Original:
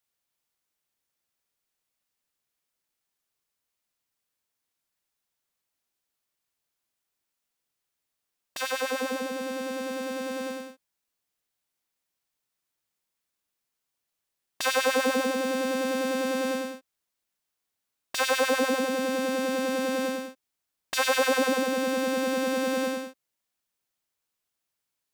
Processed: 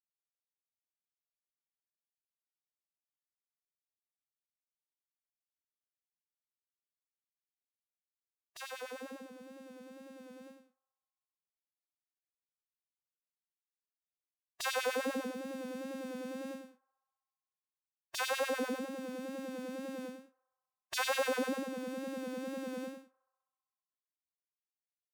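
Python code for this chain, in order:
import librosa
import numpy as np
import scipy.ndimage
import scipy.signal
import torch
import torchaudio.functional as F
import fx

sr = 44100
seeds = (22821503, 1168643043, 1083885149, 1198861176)

y = fx.bin_expand(x, sr, power=2.0)
y = fx.wow_flutter(y, sr, seeds[0], rate_hz=2.1, depth_cents=46.0)
y = fx.echo_banded(y, sr, ms=65, feedback_pct=79, hz=1000.0, wet_db=-24)
y = y * 10.0 ** (-6.0 / 20.0)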